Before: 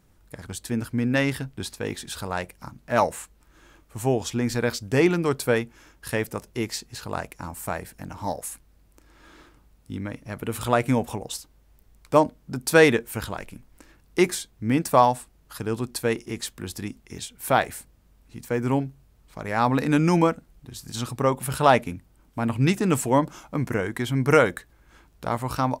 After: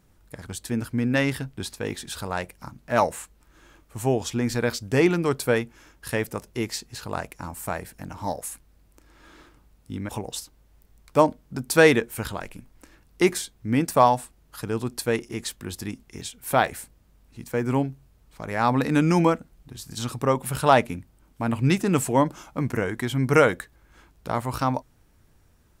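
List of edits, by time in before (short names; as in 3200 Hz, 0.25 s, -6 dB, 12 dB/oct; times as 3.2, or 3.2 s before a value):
10.09–11.06 cut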